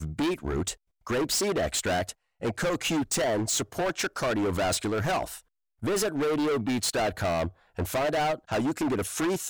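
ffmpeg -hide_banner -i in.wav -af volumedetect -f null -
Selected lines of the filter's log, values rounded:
mean_volume: -28.4 dB
max_volume: -24.1 dB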